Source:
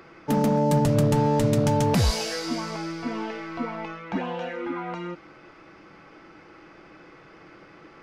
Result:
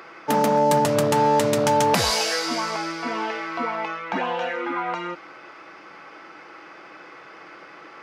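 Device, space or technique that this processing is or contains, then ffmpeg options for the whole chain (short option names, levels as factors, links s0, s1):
filter by subtraction: -filter_complex "[0:a]asplit=2[s0][s1];[s1]lowpass=970,volume=-1[s2];[s0][s2]amix=inputs=2:normalize=0,volume=2.11"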